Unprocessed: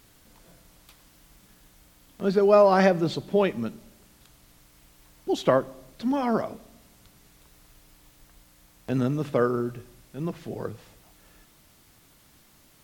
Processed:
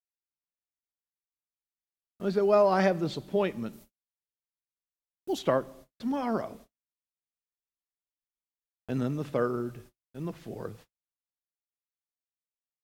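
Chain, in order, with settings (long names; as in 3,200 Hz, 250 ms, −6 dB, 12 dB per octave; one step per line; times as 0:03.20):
noise gate −45 dBFS, range −52 dB
0:03.73–0:05.39: high-shelf EQ 8,800 Hz +11 dB
level −5 dB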